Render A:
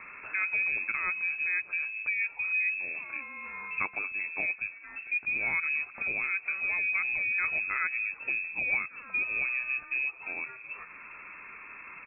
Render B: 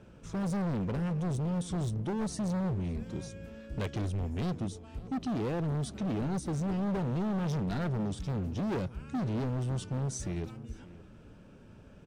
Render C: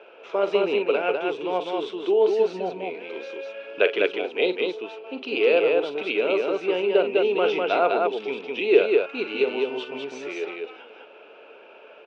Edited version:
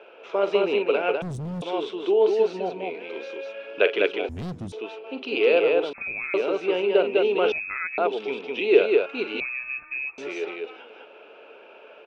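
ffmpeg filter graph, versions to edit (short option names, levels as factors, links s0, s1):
-filter_complex "[1:a]asplit=2[s0][s1];[0:a]asplit=3[s2][s3][s4];[2:a]asplit=6[s5][s6][s7][s8][s9][s10];[s5]atrim=end=1.222[s11];[s0]atrim=start=1.218:end=1.622[s12];[s6]atrim=start=1.618:end=4.292[s13];[s1]atrim=start=4.288:end=4.722[s14];[s7]atrim=start=4.718:end=5.932[s15];[s2]atrim=start=5.928:end=6.342[s16];[s8]atrim=start=6.338:end=7.522[s17];[s3]atrim=start=7.518:end=7.982[s18];[s9]atrim=start=7.978:end=9.402[s19];[s4]atrim=start=9.398:end=10.182[s20];[s10]atrim=start=10.178[s21];[s11][s12]acrossfade=d=0.004:c1=hsin:c2=hsin[s22];[s22][s13]acrossfade=d=0.004:c1=hsin:c2=hsin[s23];[s23][s14]acrossfade=d=0.004:c1=hsin:c2=hsin[s24];[s24][s15]acrossfade=d=0.004:c1=hsin:c2=hsin[s25];[s25][s16]acrossfade=d=0.004:c1=hsin:c2=hsin[s26];[s26][s17]acrossfade=d=0.004:c1=hsin:c2=hsin[s27];[s27][s18]acrossfade=d=0.004:c1=hsin:c2=hsin[s28];[s28][s19]acrossfade=d=0.004:c1=hsin:c2=hsin[s29];[s29][s20]acrossfade=d=0.004:c1=hsin:c2=hsin[s30];[s30][s21]acrossfade=d=0.004:c1=hsin:c2=hsin"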